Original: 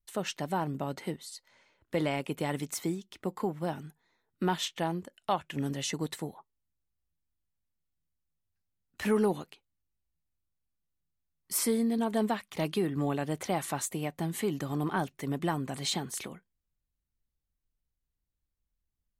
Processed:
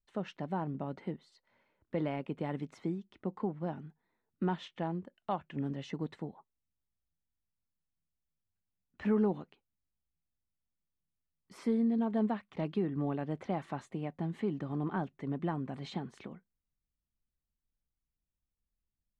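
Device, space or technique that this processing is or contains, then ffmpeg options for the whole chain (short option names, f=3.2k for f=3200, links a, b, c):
phone in a pocket: -af "lowpass=3.8k,equalizer=f=210:t=o:w=0.73:g=4.5,highshelf=f=2.4k:g=-11.5,volume=-4.5dB"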